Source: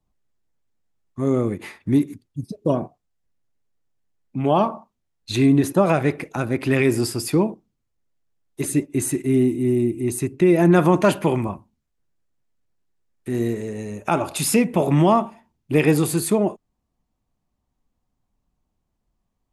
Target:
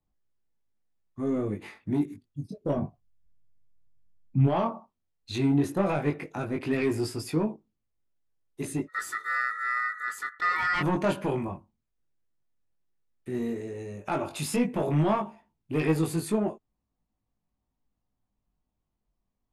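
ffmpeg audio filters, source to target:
ffmpeg -i in.wav -filter_complex "[0:a]asettb=1/sr,asplit=3[link_01][link_02][link_03];[link_01]atrim=end=8.874[link_04];[link_02]atrim=start=8.87:end=10.81,asetpts=PTS-STARTPTS,afade=type=in:duration=0.004:curve=qsin,afade=type=out:start_time=1.936:duration=0.004:curve=qsin,aeval=exprs='val(0)*sin(2*PI*1600*n/s)':channel_layout=same[link_05];[link_03]atrim=start=10.806[link_06];[link_04][link_05]acrossfade=duration=0.004:curve1=hsin:curve2=qsin[link_07];[link_07][link_06]acrossfade=duration=0.004:curve1=qsin:curve2=hsin,asoftclip=type=tanh:threshold=-11.5dB,highshelf=frequency=6800:gain=-8.5,flanger=delay=18.5:depth=3.3:speed=0.12,asplit=3[link_08][link_09][link_10];[link_08]afade=type=out:start_time=2.76:duration=0.02[link_11];[link_09]asubboost=boost=6.5:cutoff=180,afade=type=in:start_time=2.76:duration=0.02,afade=type=out:start_time=4.46:duration=0.02[link_12];[link_10]afade=type=in:start_time=4.46:duration=0.02[link_13];[link_11][link_12][link_13]amix=inputs=3:normalize=0,volume=-3.5dB" out.wav

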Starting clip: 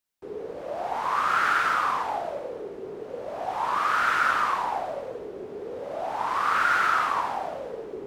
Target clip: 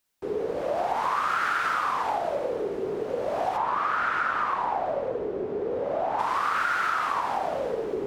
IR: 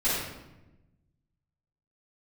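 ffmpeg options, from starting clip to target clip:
-filter_complex "[0:a]asplit=3[link_01][link_02][link_03];[link_01]afade=type=out:start_time=3.56:duration=0.02[link_04];[link_02]lowpass=frequency=1700:poles=1,afade=type=in:start_time=3.56:duration=0.02,afade=type=out:start_time=6.18:duration=0.02[link_05];[link_03]afade=type=in:start_time=6.18:duration=0.02[link_06];[link_04][link_05][link_06]amix=inputs=3:normalize=0,acompressor=threshold=-31dB:ratio=6,volume=7.5dB"

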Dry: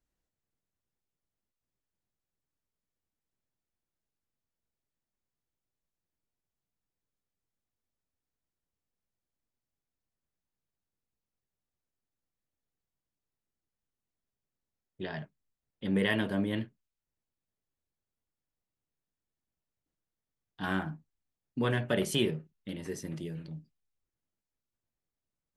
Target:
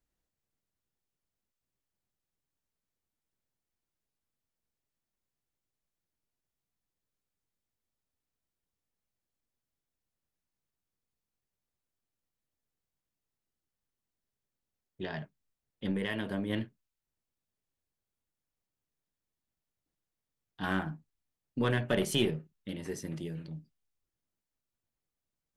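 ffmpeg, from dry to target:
ffmpeg -i in.wav -filter_complex "[0:a]asettb=1/sr,asplit=3[link_01][link_02][link_03];[link_01]atrim=end=15.914[link_04];[link_02]atrim=start=15.91:end=16.5,asetpts=PTS-STARTPTS,afade=type=in:duration=0.004:curve=qsin,afade=type=out:start_time=0.586:duration=0.004:curve=qsin,acompressor=threshold=-31dB:ratio=4[link_05];[link_03]atrim=start=16.496[link_06];[link_04][link_05]acrossfade=duration=0.004:curve1=hsin:curve2=qsin[link_07];[link_07][link_06]acrossfade=duration=0.004:curve1=qsin:curve2=hsin,aeval=exprs='0.178*(cos(1*acos(clip(val(0)/0.178,-1,1)))-cos(1*PI/2))+0.00631*(cos(6*acos(clip(val(0)/0.178,-1,1)))-cos(6*PI/2))':channel_layout=same" out.wav

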